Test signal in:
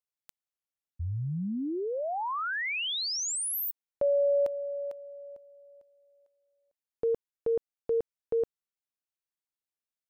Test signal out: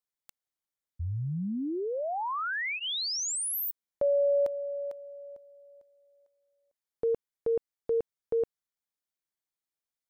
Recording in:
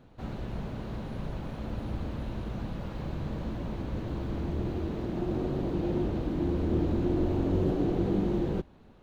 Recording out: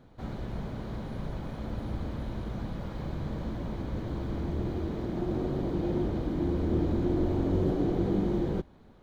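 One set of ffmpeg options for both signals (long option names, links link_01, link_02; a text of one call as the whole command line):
ffmpeg -i in.wav -af "bandreject=frequency=2700:width=8.4" out.wav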